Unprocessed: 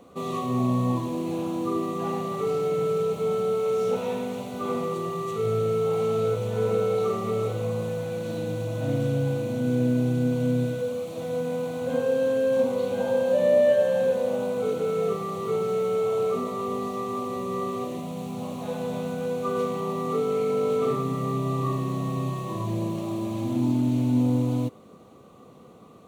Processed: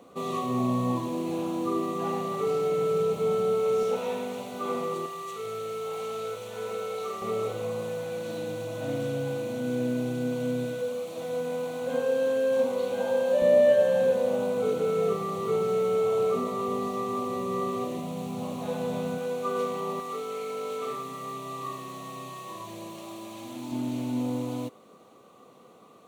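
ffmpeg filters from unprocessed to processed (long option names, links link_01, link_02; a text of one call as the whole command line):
ffmpeg -i in.wav -af "asetnsamples=nb_out_samples=441:pad=0,asendcmd='2.94 highpass f 94;3.83 highpass f 360;5.06 highpass f 1300;7.22 highpass f 390;13.42 highpass f 93;19.18 highpass f 400;20 highpass f 1300;23.72 highpass f 490',highpass=frequency=200:poles=1" out.wav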